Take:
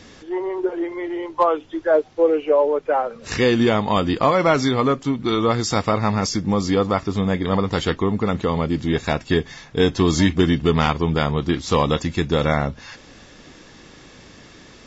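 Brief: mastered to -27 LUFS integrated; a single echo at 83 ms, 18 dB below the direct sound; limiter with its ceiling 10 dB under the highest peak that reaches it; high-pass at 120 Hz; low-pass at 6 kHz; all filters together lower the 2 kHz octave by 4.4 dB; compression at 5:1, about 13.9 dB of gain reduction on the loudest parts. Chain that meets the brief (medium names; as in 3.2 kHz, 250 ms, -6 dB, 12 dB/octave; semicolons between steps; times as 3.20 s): high-pass 120 Hz; low-pass 6 kHz; peaking EQ 2 kHz -5.5 dB; compression 5:1, threshold -29 dBFS; peak limiter -24.5 dBFS; delay 83 ms -18 dB; trim +8 dB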